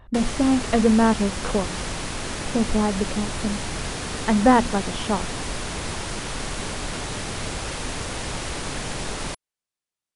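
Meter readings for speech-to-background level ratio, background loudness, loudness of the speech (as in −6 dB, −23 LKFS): 7.0 dB, −29.5 LKFS, −22.5 LKFS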